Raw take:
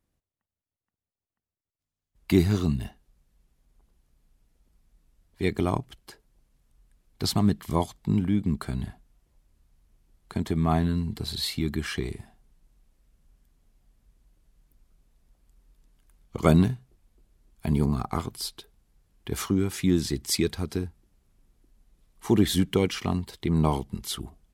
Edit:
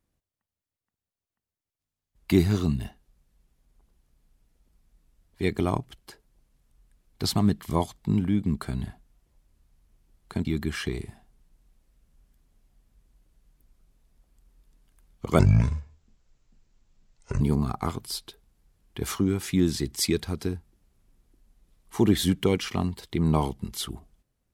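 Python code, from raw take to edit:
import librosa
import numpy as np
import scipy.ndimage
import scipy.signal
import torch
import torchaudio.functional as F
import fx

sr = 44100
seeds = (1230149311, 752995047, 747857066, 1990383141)

y = fx.edit(x, sr, fx.cut(start_s=10.45, length_s=1.11),
    fx.speed_span(start_s=16.5, length_s=1.21, speed=0.6), tone=tone)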